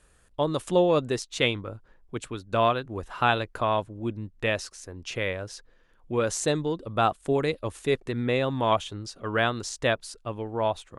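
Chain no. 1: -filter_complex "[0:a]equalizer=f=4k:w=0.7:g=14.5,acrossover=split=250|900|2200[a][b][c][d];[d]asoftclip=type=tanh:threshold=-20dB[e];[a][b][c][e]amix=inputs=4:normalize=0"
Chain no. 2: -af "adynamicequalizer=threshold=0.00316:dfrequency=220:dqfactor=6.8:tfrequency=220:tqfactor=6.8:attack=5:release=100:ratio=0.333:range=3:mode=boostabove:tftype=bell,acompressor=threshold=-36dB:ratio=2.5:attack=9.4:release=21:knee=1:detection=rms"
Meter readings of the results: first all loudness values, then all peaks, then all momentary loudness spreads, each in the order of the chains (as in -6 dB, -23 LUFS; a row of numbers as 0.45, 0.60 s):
-24.5, -35.5 LUFS; -4.5, -19.0 dBFS; 12, 6 LU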